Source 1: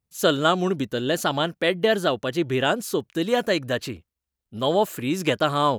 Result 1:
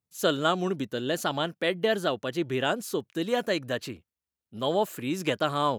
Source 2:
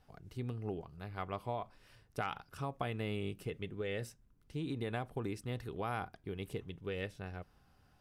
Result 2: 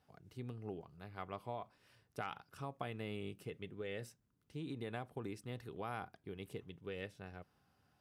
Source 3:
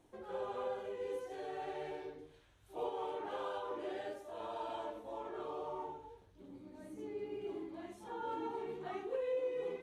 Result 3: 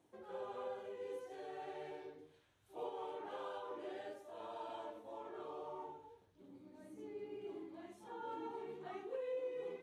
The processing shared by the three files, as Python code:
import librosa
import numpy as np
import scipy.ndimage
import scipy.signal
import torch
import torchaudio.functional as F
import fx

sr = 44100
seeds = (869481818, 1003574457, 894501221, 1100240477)

y = scipy.signal.sosfilt(scipy.signal.butter(2, 100.0, 'highpass', fs=sr, output='sos'), x)
y = F.gain(torch.from_numpy(y), -5.0).numpy()